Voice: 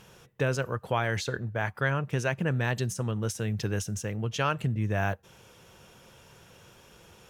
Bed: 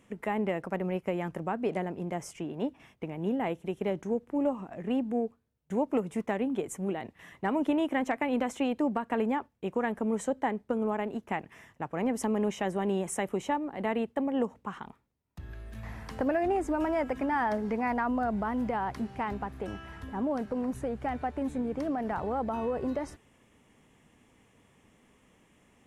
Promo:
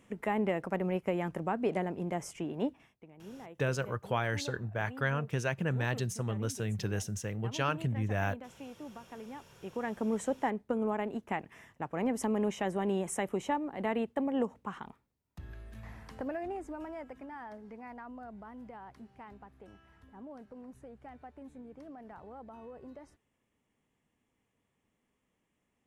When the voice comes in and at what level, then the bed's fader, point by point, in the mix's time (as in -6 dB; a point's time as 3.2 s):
3.20 s, -4.0 dB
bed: 2.7 s -0.5 dB
3.04 s -17.5 dB
9.25 s -17.5 dB
10.04 s -2 dB
15.33 s -2 dB
17.39 s -17 dB